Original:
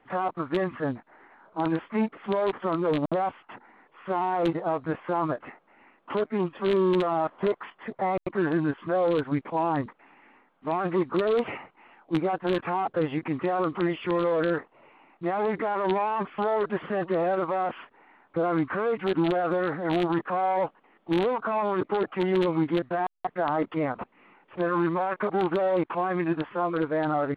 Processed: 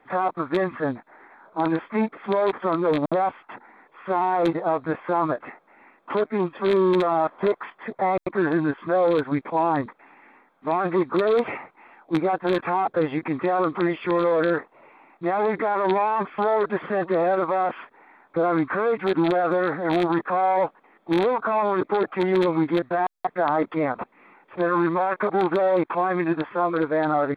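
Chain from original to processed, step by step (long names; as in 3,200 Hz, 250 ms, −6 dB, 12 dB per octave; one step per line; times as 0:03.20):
low-shelf EQ 170 Hz −8 dB
notch filter 2,900 Hz, Q 5.3
level +5 dB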